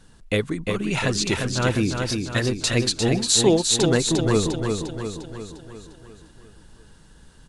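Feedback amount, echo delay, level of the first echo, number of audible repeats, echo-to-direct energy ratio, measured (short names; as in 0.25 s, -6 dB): 54%, 0.351 s, -5.0 dB, 6, -3.5 dB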